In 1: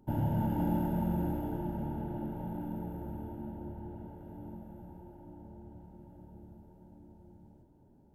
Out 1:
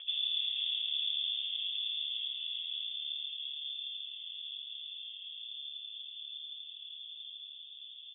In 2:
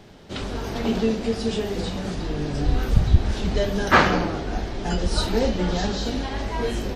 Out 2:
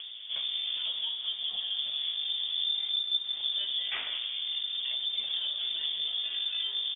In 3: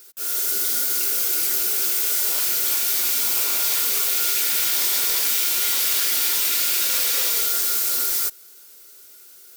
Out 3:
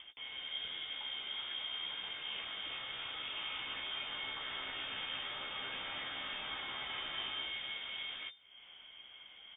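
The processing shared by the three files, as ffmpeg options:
ffmpeg -i in.wav -filter_complex "[0:a]acrossover=split=2400[link_01][link_02];[link_01]acompressor=threshold=-31dB:ratio=6[link_03];[link_03][link_02]amix=inputs=2:normalize=0,tiltshelf=frequency=1100:gain=9.5,acompressor=mode=upward:threshold=-29dB:ratio=2.5,aeval=exprs='0.266*(cos(1*acos(clip(val(0)/0.266,-1,1)))-cos(1*PI/2))+0.0299*(cos(4*acos(clip(val(0)/0.266,-1,1)))-cos(4*PI/2))':channel_layout=same,asplit=2[link_04][link_05];[link_05]adelay=15,volume=-7.5dB[link_06];[link_04][link_06]amix=inputs=2:normalize=0,lowpass=frequency=3100:width_type=q:width=0.5098,lowpass=frequency=3100:width_type=q:width=0.6013,lowpass=frequency=3100:width_type=q:width=0.9,lowpass=frequency=3100:width_type=q:width=2.563,afreqshift=-3600,volume=-8.5dB" out.wav

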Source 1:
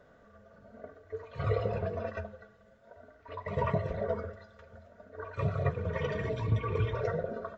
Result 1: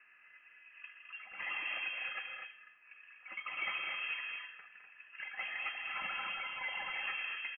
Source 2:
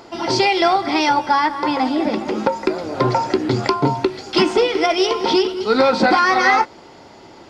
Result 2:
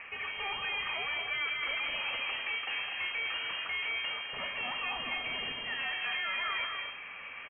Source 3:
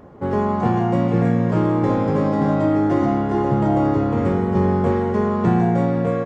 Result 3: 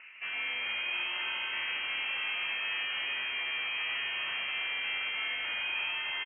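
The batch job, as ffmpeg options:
ffmpeg -i in.wav -af "highpass=860,areverse,acompressor=threshold=-30dB:ratio=6,areverse,aeval=exprs='(tanh(70.8*val(0)+0.35)-tanh(0.35))/70.8':channel_layout=same,aecho=1:1:160.3|209.9|247.8:0.251|0.398|0.447,lowpass=frequency=2700:width_type=q:width=0.5098,lowpass=frequency=2700:width_type=q:width=0.6013,lowpass=frequency=2700:width_type=q:width=0.9,lowpass=frequency=2700:width_type=q:width=2.563,afreqshift=-3200,volume=3.5dB" out.wav

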